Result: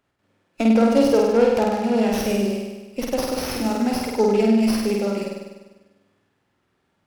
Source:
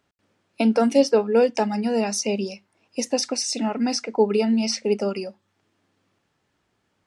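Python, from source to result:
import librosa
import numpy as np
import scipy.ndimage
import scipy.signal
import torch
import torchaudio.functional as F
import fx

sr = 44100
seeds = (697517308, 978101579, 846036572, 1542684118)

y = fx.room_flutter(x, sr, wall_m=8.5, rt60_s=1.2)
y = fx.running_max(y, sr, window=5)
y = F.gain(torch.from_numpy(y), -1.5).numpy()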